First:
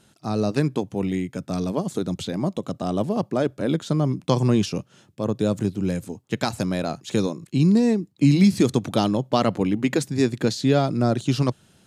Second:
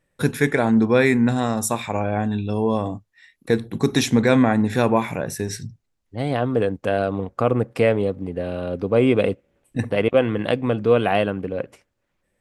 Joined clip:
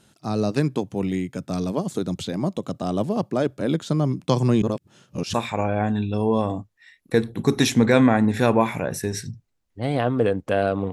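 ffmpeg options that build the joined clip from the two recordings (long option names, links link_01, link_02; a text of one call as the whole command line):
ffmpeg -i cue0.wav -i cue1.wav -filter_complex "[0:a]apad=whole_dur=10.92,atrim=end=10.92,asplit=2[link_01][link_02];[link_01]atrim=end=4.622[link_03];[link_02]atrim=start=4.618:end=5.342,asetpts=PTS-STARTPTS,areverse[link_04];[1:a]atrim=start=1.698:end=7.28[link_05];[link_03][link_04]acrossfade=duration=0.004:curve1=hsin:curve2=hsin[link_06];[link_06][link_05]acrossfade=duration=0.004:curve1=hsin:curve2=hsin" out.wav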